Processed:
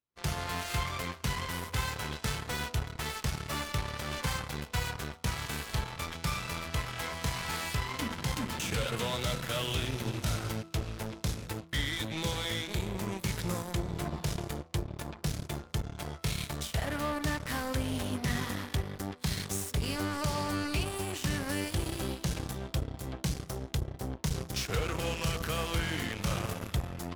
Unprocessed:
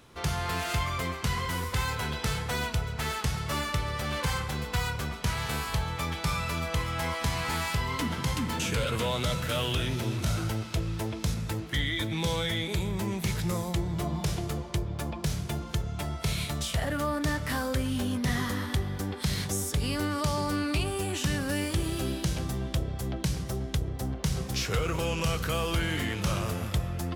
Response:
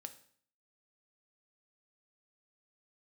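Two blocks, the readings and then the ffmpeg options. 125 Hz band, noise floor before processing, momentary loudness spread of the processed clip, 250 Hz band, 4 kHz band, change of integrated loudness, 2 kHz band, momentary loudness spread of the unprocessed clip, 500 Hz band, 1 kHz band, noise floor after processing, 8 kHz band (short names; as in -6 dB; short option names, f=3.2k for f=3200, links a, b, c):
-4.5 dB, -38 dBFS, 4 LU, -4.5 dB, -3.0 dB, -4.0 dB, -3.0 dB, 4 LU, -4.0 dB, -4.0 dB, -51 dBFS, -2.5 dB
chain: -af "aeval=exprs='0.141*(cos(1*acos(clip(val(0)/0.141,-1,1)))-cos(1*PI/2))+0.02*(cos(7*acos(clip(val(0)/0.141,-1,1)))-cos(7*PI/2))':c=same,asoftclip=type=tanh:threshold=-22.5dB,bandreject=f=82.46:t=h:w=4,bandreject=f=164.92:t=h:w=4,bandreject=f=247.38:t=h:w=4,bandreject=f=329.84:t=h:w=4,bandreject=f=412.3:t=h:w=4,bandreject=f=494.76:t=h:w=4,bandreject=f=577.22:t=h:w=4,bandreject=f=659.68:t=h:w=4,bandreject=f=742.14:t=h:w=4,bandreject=f=824.6:t=h:w=4,bandreject=f=907.06:t=h:w=4,bandreject=f=989.52:t=h:w=4,bandreject=f=1.07198k:t=h:w=4,bandreject=f=1.15444k:t=h:w=4,bandreject=f=1.2369k:t=h:w=4,bandreject=f=1.31936k:t=h:w=4,bandreject=f=1.40182k:t=h:w=4"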